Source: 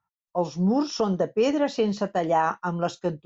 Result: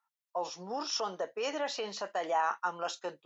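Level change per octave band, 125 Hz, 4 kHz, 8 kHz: under -25 dB, -1.0 dB, n/a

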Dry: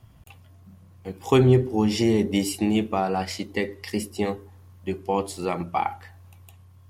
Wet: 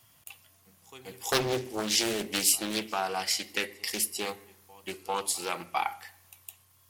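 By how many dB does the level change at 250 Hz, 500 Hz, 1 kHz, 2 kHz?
-14.0, -10.0, -5.0, +0.5 dB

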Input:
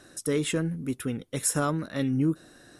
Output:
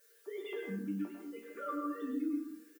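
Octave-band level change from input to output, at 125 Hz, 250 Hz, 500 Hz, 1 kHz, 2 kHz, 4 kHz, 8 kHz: under -20 dB, -9.0 dB, -11.0 dB, -7.5 dB, -12.0 dB, under -15 dB, under -30 dB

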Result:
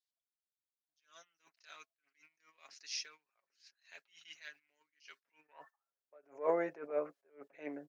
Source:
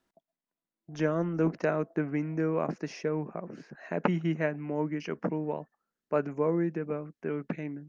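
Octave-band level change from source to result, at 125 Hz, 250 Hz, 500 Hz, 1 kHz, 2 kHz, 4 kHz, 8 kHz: -32.5 dB, -20.0 dB, -10.5 dB, -10.5 dB, -12.0 dB, +2.0 dB, n/a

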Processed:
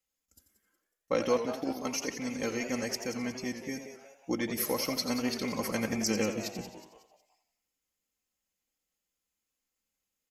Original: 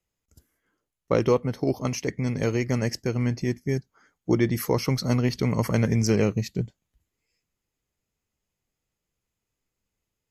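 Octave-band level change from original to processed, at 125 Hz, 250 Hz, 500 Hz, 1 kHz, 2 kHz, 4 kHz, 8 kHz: -19.5, -7.5, -7.0, -4.0, -3.0, -0.5, +0.5 dB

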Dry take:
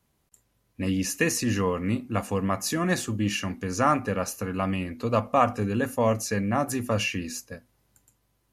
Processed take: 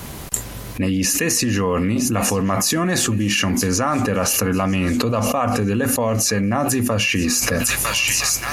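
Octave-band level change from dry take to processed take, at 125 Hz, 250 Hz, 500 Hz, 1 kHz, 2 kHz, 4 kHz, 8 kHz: +7.5, +8.0, +5.5, +4.0, +9.0, +13.0, +15.0 dB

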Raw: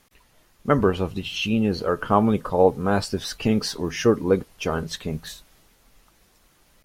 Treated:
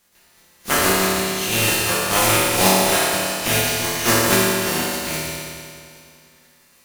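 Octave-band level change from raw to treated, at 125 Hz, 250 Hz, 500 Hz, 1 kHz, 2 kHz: +0.5, -1.5, 0.0, +5.0, +12.5 dB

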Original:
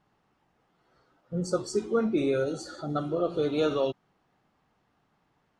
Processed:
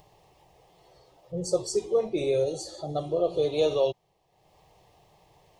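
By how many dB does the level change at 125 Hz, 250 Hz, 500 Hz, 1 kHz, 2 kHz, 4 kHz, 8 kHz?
-1.5, -5.5, +3.0, -1.0, -5.0, +3.0, +5.5 dB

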